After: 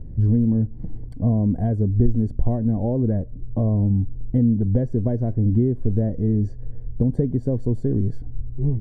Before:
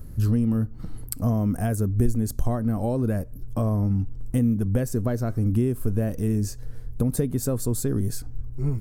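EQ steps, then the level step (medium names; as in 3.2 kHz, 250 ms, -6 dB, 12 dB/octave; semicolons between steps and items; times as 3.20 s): boxcar filter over 34 samples; distance through air 68 m; +4.0 dB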